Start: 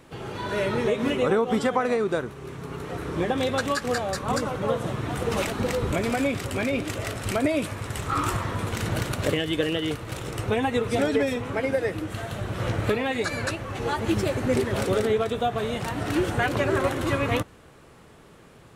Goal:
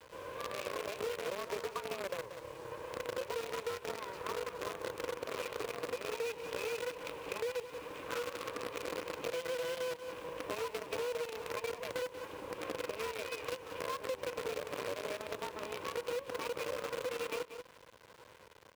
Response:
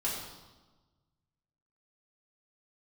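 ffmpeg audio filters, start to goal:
-filter_complex "[0:a]asplit=3[link_01][link_02][link_03];[link_01]bandpass=frequency=300:width_type=q:width=8,volume=0dB[link_04];[link_02]bandpass=frequency=870:width_type=q:width=8,volume=-6dB[link_05];[link_03]bandpass=frequency=2240:width_type=q:width=8,volume=-9dB[link_06];[link_04][link_05][link_06]amix=inputs=3:normalize=0,afreqshift=190,acrossover=split=210|3000[link_07][link_08][link_09];[link_08]acompressor=threshold=-36dB:ratio=4[link_10];[link_07][link_10][link_09]amix=inputs=3:normalize=0,acrusher=bits=7:dc=4:mix=0:aa=0.000001,highshelf=frequency=6300:gain=-4.5,asplit=2[link_11][link_12];[link_12]aecho=0:1:183:0.168[link_13];[link_11][link_13]amix=inputs=2:normalize=0,acompressor=threshold=-42dB:ratio=6,highpass=78,volume=7.5dB"

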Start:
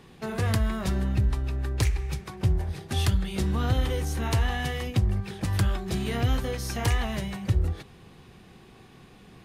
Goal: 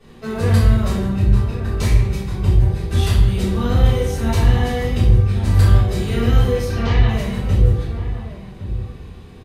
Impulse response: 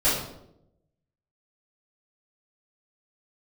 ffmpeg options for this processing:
-filter_complex "[0:a]asettb=1/sr,asplit=3[link_01][link_02][link_03];[link_01]atrim=end=6.644[link_04];[link_02]atrim=start=6.64:end=7.08,asetpts=PTS-STARTPTS,afade=type=in:duration=0.004:curve=qsin,afade=type=out:start_time=0.436:duration=0.004:curve=qsin,lowpass=frequency=4600:width=0.5412,lowpass=frequency=4600:width=1.3066[link_05];[link_03]atrim=start=7.076[link_06];[link_04][link_05]acrossfade=duration=0.004:curve1=hsin:curve2=qsin[link_07];[link_07][link_06]acrossfade=duration=0.004:curve1=qsin:curve2=hsin,asplit=2[link_08][link_09];[link_09]adelay=1108,volume=-11dB,highshelf=frequency=4000:gain=-24.9[link_10];[link_08][link_10]amix=inputs=2:normalize=0[link_11];[1:a]atrim=start_sample=2205,asetrate=36162,aresample=44100[link_12];[link_11][link_12]afir=irnorm=-1:irlink=0,volume=-10dB"

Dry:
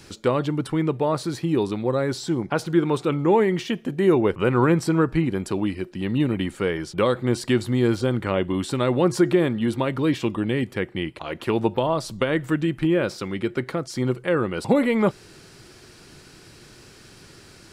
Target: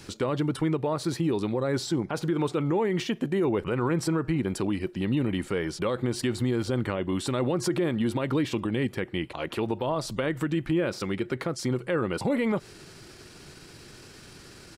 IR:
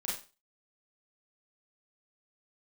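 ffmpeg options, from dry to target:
-af "atempo=1.2,alimiter=limit=-18dB:level=0:latency=1:release=101"

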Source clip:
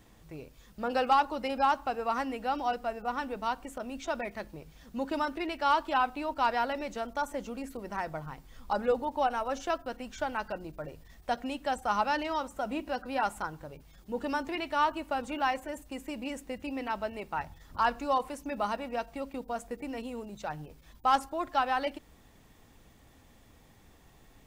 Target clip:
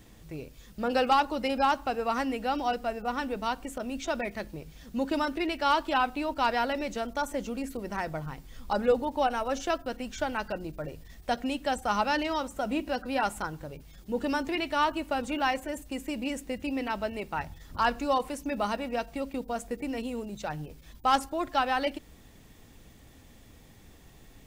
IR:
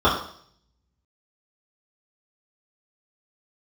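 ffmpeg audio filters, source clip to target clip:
-af "equalizer=frequency=990:width_type=o:width=1.5:gain=-5.5,volume=5.5dB"

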